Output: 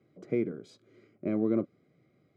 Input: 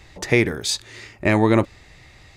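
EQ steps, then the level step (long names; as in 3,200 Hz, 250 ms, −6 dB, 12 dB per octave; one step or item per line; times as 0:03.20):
moving average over 49 samples
high-pass filter 160 Hz 24 dB per octave
−7.5 dB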